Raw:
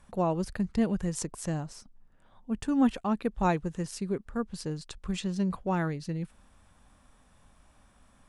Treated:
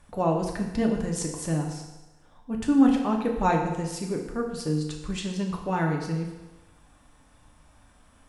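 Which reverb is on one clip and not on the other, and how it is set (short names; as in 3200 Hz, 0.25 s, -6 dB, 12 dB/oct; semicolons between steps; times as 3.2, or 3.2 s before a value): FDN reverb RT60 1.1 s, low-frequency decay 0.8×, high-frequency decay 0.95×, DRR 0.5 dB; gain +1.5 dB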